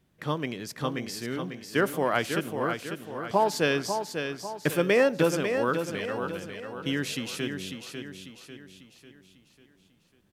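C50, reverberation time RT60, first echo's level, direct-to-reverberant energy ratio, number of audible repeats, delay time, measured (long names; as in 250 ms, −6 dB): no reverb audible, no reverb audible, −7.0 dB, no reverb audible, 5, 546 ms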